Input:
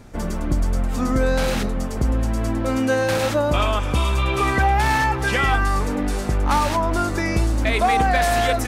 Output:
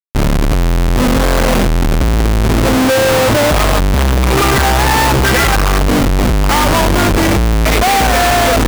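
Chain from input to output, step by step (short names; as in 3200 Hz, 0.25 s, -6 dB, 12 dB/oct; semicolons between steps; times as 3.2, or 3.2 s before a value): wow and flutter 25 cents; Schmitt trigger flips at -25 dBFS; gain +9 dB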